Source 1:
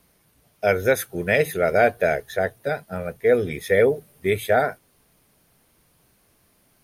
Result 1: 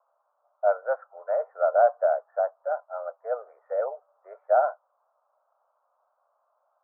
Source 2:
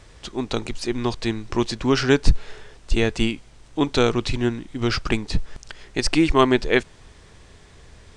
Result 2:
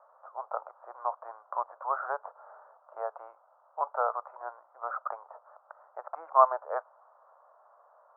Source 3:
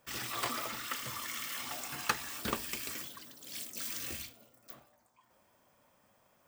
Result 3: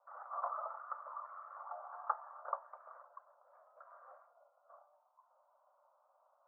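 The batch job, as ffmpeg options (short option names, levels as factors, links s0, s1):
-af "asuperpass=centerf=870:order=12:qfactor=1.1"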